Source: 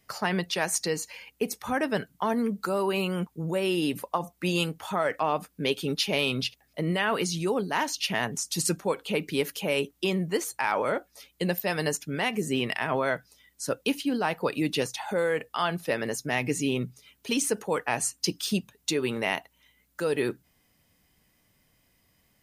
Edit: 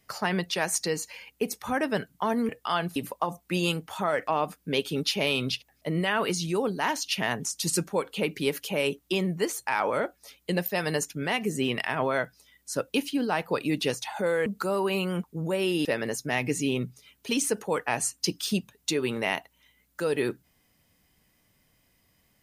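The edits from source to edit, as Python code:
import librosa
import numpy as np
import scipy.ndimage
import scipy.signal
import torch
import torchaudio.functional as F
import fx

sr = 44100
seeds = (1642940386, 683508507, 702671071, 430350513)

y = fx.edit(x, sr, fx.swap(start_s=2.49, length_s=1.39, other_s=15.38, other_length_s=0.47), tone=tone)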